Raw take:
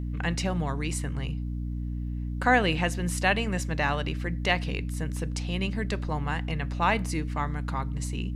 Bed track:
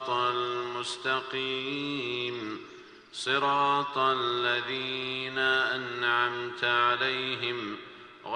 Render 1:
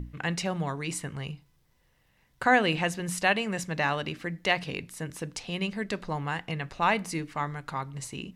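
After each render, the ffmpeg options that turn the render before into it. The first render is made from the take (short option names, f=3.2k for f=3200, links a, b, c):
-af "bandreject=f=60:t=h:w=6,bandreject=f=120:t=h:w=6,bandreject=f=180:t=h:w=6,bandreject=f=240:t=h:w=6,bandreject=f=300:t=h:w=6"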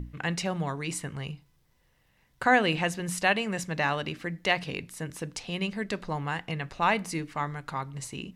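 -af anull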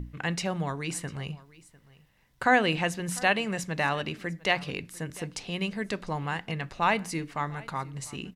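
-af "aecho=1:1:700:0.0841"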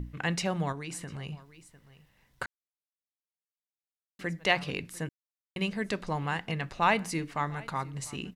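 -filter_complex "[0:a]asettb=1/sr,asplit=3[a][b][c];[a]atrim=end=0.724[d];[b]atrim=start=0.72:end=1.32,asetpts=PTS-STARTPTS,afade=t=in:d=0.004:c=qsin,afade=t=out:st=0.596:d=0.004:c=qsin,acompressor=threshold=-35dB:ratio=5:attack=3.2:release=140:knee=1:detection=peak[e];[c]atrim=start=1.316[f];[d][e]acrossfade=d=0.004:c1=hsin:c2=qsin[g];[g][f]acrossfade=d=0.004:c1=qsin:c2=hsin,asplit=5[h][i][j][k][l];[h]atrim=end=2.46,asetpts=PTS-STARTPTS,afade=t=out:st=2.456:d=0.004:c=hsin[m];[i]atrim=start=2.46:end=4.19,asetpts=PTS-STARTPTS,volume=0[n];[j]atrim=start=4.19:end=5.09,asetpts=PTS-STARTPTS,afade=t=in:d=0.004:c=hsin,afade=t=out:st=0.896:d=0.004:c=hsin[o];[k]atrim=start=5.09:end=5.56,asetpts=PTS-STARTPTS,volume=0[p];[l]atrim=start=5.56,asetpts=PTS-STARTPTS,afade=t=in:d=0.004:c=hsin[q];[m][n][o][p][q]concat=n=5:v=0:a=1"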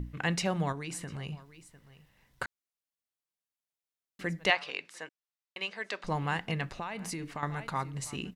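-filter_complex "[0:a]asettb=1/sr,asplit=3[a][b][c];[a]atrim=end=4.504[d];[b]atrim=start=4.5:end=6.04,asetpts=PTS-STARTPTS,afade=t=in:d=0.004:c=qsin,afade=t=out:st=1.536:d=0.004:c=qsin,highpass=650,lowpass=6k[e];[c]atrim=start=6.036[f];[d][e]acrossfade=d=0.004:c1=hsin:c2=qsin[g];[g][f]acrossfade=d=0.004:c1=qsin:c2=hsin,asettb=1/sr,asplit=3[h][i][j];[h]atrim=end=6.654[k];[i]atrim=start=6.65:end=7.43,asetpts=PTS-STARTPTS,afade=t=in:d=0.004:c=qsin,afade=t=out:st=0.776:d=0.004:c=qsin,acompressor=threshold=-33dB:ratio=12:attack=3.2:release=140:knee=1:detection=peak[l];[j]atrim=start=7.426[m];[k][l]acrossfade=d=0.004:c1=hsin:c2=qsin[n];[n][m]acrossfade=d=0.004:c1=qsin:c2=hsin"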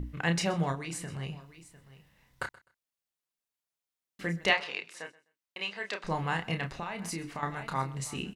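-filter_complex "[0:a]asplit=2[a][b];[b]adelay=30,volume=-6dB[c];[a][c]amix=inputs=2:normalize=0,aecho=1:1:127|254:0.0891|0.0187"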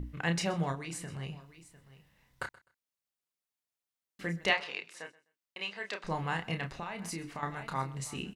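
-af "volume=-2.5dB"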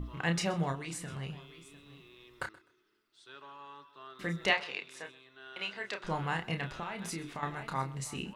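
-filter_complex "[1:a]volume=-24.5dB[a];[0:a][a]amix=inputs=2:normalize=0"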